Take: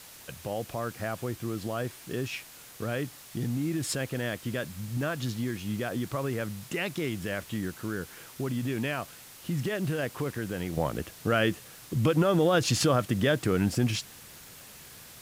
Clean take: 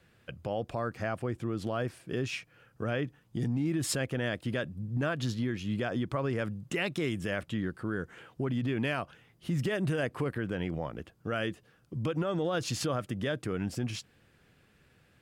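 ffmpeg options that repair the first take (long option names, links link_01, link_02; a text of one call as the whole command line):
ffmpeg -i in.wav -af "adeclick=threshold=4,afwtdn=0.004,asetnsamples=nb_out_samples=441:pad=0,asendcmd='10.77 volume volume -7.5dB',volume=0dB" out.wav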